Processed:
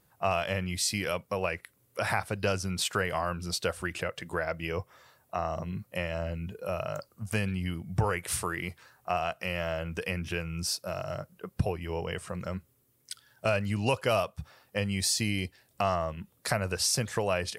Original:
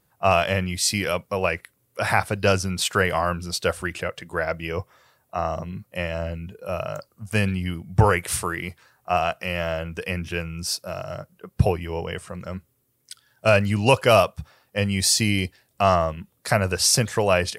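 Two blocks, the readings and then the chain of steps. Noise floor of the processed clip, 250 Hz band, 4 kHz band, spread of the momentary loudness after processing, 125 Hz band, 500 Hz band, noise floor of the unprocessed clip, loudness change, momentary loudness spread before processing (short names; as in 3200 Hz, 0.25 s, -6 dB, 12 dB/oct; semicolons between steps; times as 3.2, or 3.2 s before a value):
-69 dBFS, -7.0 dB, -7.5 dB, 10 LU, -8.0 dB, -8.5 dB, -68 dBFS, -8.5 dB, 14 LU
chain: compressor 2:1, threshold -32 dBFS, peak gain reduction 11.5 dB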